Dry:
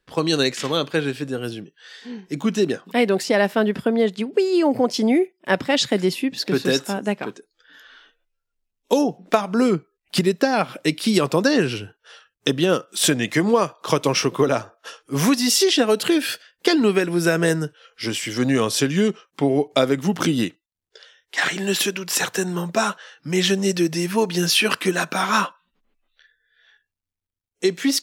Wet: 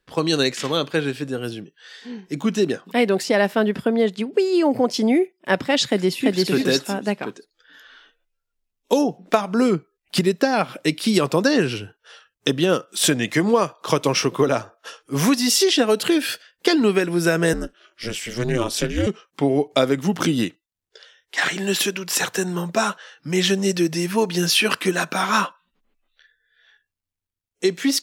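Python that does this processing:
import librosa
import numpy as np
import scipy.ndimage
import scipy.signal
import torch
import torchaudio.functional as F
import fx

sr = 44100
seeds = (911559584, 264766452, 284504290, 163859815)

y = fx.echo_throw(x, sr, start_s=5.86, length_s=0.61, ms=340, feedback_pct=15, wet_db=-1.0)
y = fx.ring_mod(y, sr, carrier_hz=120.0, at=(17.53, 19.07))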